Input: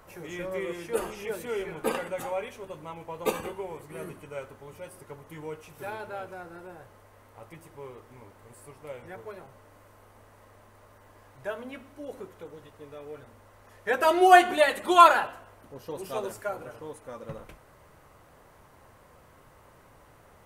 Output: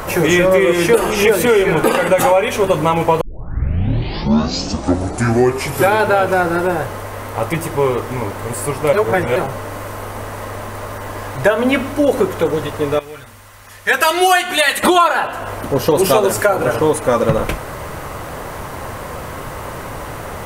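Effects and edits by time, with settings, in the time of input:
3.21 s: tape start 2.77 s
8.93–9.36 s: reverse
12.99–14.83 s: amplifier tone stack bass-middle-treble 5-5-5
whole clip: compression 16:1, threshold -36 dBFS; loudness maximiser +29 dB; trim -1 dB

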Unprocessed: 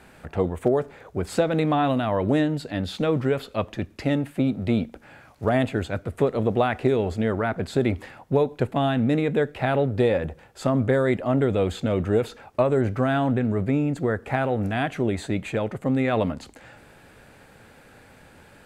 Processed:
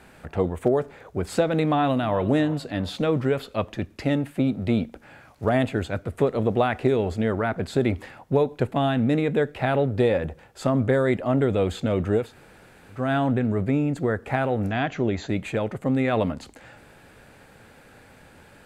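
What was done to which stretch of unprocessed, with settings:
1.66–2.17 s: echo throw 360 ms, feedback 40%, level -16.5 dB
12.25–13.00 s: room tone, crossfade 0.24 s
14.70–15.29 s: brick-wall FIR low-pass 7.5 kHz

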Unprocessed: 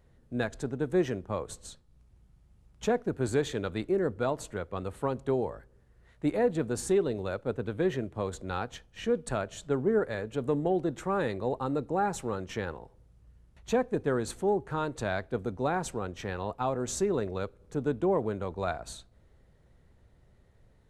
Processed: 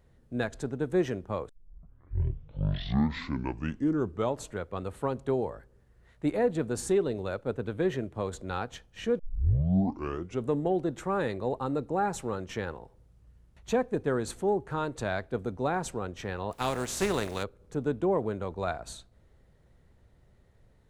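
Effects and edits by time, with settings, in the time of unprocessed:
1.49 s: tape start 3.02 s
9.19 s: tape start 1.30 s
16.51–17.42 s: spectral contrast reduction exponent 0.56

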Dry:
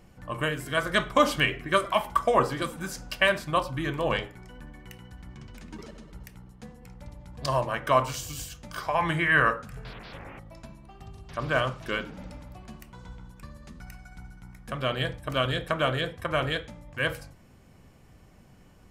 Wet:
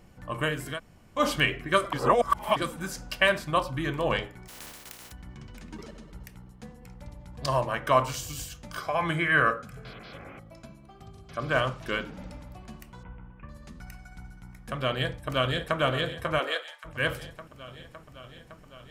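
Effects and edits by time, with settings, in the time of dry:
0.75–1.20 s: room tone, crossfade 0.10 s
1.93–2.56 s: reverse
4.47–5.11 s: spectral contrast reduction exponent 0.19
8.78–11.51 s: comb of notches 920 Hz
13.03–13.49 s: elliptic low-pass 2.8 kHz
14.87–15.79 s: echo throw 560 ms, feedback 75%, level -11.5 dB
16.38–16.84 s: high-pass 260 Hz -> 1.1 kHz 24 dB/octave

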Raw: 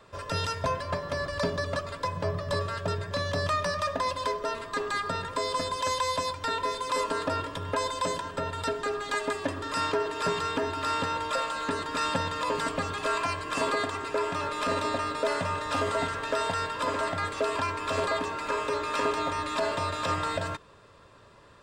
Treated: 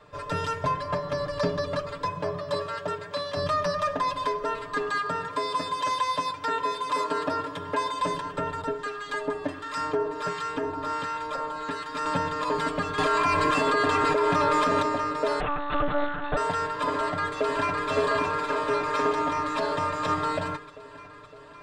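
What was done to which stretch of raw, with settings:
2.10–3.36 s: high-pass 170 Hz -> 620 Hz 6 dB/octave
4.90–8.01 s: high-pass 160 Hz 6 dB/octave
8.61–12.06 s: harmonic tremolo 1.4 Hz, crossover 1.1 kHz
12.98–14.82 s: level flattener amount 100%
15.40–16.37 s: monotone LPC vocoder at 8 kHz 290 Hz
16.92–17.89 s: echo throw 560 ms, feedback 70%, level -3.5 dB
whole clip: treble shelf 5 kHz -9.5 dB; comb 6.7 ms, depth 78%

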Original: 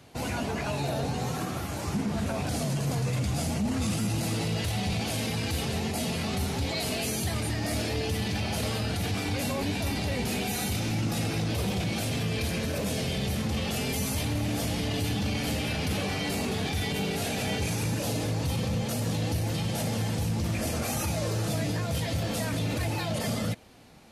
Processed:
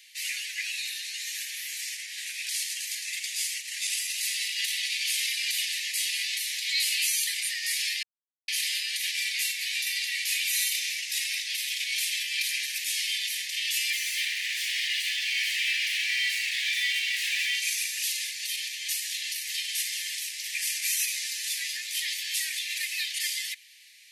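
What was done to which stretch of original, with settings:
8.03–8.48 s: mute
13.90–17.55 s: overdrive pedal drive 26 dB, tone 1.2 kHz, clips at -18.5 dBFS
whole clip: steep high-pass 1.8 kHz 96 dB/octave; trim +7.5 dB

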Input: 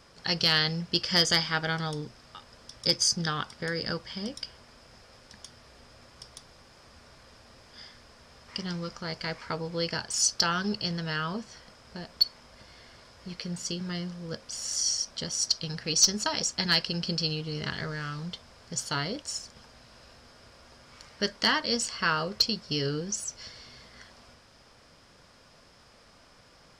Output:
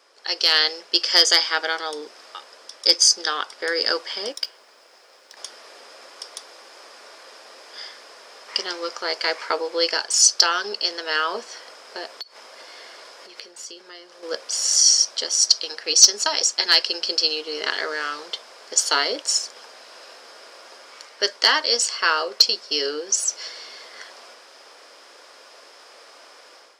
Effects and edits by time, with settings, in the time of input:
4.32–5.37 s: companding laws mixed up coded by A
12.07–14.23 s: compression 8:1, threshold -44 dBFS
whole clip: inverse Chebyshev high-pass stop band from 180 Hz, stop band 40 dB; dynamic bell 5.9 kHz, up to +4 dB, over -38 dBFS, Q 0.85; level rider gain up to 11 dB

